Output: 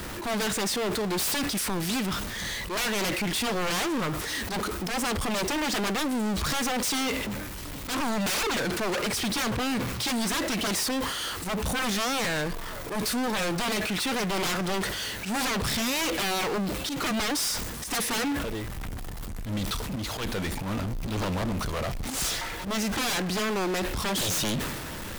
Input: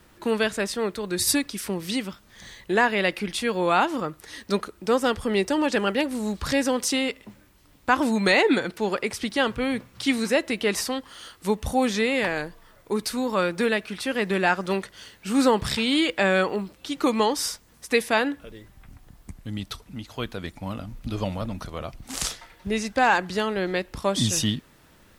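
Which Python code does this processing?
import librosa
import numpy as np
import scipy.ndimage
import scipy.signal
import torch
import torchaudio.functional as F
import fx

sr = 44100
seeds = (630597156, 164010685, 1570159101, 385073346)

y = 10.0 ** (-25.0 / 20.0) * (np.abs((x / 10.0 ** (-25.0 / 20.0) + 3.0) % 4.0 - 2.0) - 1.0)
y = fx.auto_swell(y, sr, attack_ms=101.0)
y = fx.power_curve(y, sr, exponent=0.35)
y = fx.sustainer(y, sr, db_per_s=35.0)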